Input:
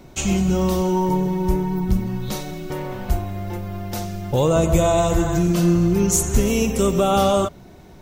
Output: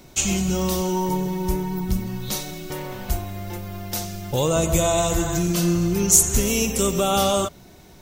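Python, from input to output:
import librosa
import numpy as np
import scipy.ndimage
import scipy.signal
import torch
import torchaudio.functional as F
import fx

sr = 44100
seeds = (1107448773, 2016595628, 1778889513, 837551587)

y = fx.high_shelf(x, sr, hz=2600.0, db=11.0)
y = y * librosa.db_to_amplitude(-4.0)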